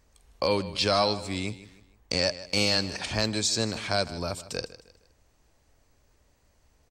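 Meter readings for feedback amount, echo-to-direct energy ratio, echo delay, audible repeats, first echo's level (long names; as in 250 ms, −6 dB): 37%, −15.5 dB, 155 ms, 3, −16.0 dB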